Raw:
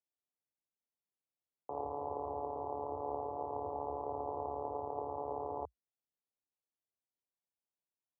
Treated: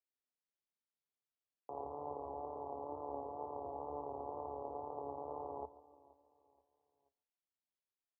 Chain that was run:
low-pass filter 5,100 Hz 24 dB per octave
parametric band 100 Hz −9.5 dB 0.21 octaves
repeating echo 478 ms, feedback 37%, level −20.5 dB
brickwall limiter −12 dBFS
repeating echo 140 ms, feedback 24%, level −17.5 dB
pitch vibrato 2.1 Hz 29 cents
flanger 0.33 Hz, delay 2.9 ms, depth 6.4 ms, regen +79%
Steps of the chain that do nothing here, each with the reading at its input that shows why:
low-pass filter 5,100 Hz: nothing at its input above 1,200 Hz
brickwall limiter −12 dBFS: peak of its input −25.0 dBFS

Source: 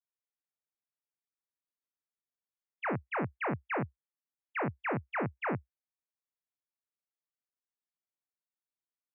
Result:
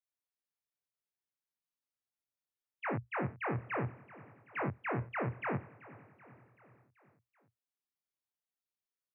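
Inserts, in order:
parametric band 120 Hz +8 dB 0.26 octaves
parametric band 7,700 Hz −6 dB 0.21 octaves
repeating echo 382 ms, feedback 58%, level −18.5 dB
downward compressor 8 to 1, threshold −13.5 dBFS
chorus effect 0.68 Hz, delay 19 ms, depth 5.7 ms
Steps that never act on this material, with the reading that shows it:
parametric band 7,700 Hz: nothing at its input above 2,700 Hz
downward compressor, threshold −13.5 dBFS: peak of its input −20.5 dBFS

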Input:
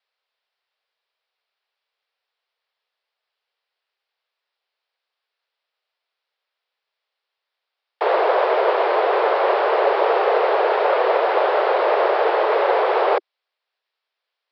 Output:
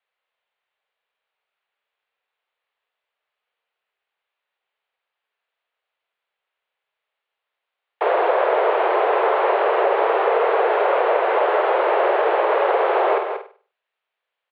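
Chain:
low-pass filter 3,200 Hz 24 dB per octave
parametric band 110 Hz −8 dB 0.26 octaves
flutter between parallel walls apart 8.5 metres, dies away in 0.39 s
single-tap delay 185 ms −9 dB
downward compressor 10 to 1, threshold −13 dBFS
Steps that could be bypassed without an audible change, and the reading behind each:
parametric band 110 Hz: nothing at its input below 300 Hz

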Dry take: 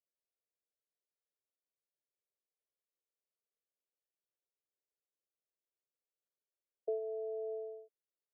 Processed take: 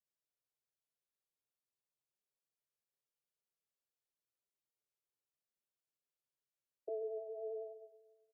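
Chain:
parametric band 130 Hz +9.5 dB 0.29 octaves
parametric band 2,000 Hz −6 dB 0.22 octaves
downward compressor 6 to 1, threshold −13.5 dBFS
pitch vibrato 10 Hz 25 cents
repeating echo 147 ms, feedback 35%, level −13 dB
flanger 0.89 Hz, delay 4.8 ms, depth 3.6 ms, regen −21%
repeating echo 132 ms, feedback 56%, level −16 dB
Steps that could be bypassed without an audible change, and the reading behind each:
parametric band 130 Hz: nothing at its input below 360 Hz
parametric band 2,000 Hz: nothing at its input above 680 Hz
downward compressor, threshold −13.5 dBFS: peak of its input −27.0 dBFS

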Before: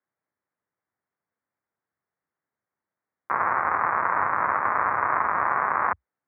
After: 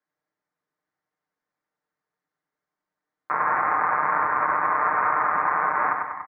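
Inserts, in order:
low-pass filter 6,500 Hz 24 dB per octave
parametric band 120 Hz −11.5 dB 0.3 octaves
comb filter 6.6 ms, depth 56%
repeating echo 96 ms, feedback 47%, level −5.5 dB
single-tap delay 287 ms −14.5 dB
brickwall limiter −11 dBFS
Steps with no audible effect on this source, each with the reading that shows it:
low-pass filter 6,500 Hz: nothing at its input above 2,400 Hz

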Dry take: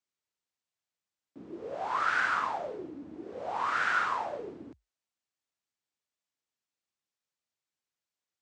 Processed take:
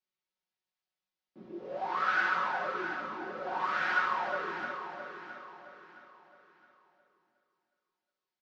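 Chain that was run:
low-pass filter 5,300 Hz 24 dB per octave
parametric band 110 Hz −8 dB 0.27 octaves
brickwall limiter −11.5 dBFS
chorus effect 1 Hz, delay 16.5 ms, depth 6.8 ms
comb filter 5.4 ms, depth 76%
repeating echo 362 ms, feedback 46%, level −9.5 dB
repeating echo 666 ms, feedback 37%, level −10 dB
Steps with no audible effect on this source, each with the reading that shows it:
brickwall limiter −11.5 dBFS: peak of its input −15.5 dBFS

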